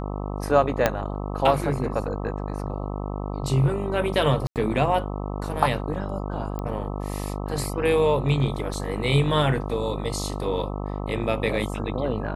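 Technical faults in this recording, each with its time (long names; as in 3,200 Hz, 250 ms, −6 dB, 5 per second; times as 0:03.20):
mains buzz 50 Hz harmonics 26 −30 dBFS
0:00.86: click −4 dBFS
0:04.47–0:04.56: drop-out 88 ms
0:06.59: click −19 dBFS
0:08.74: drop-out 2.1 ms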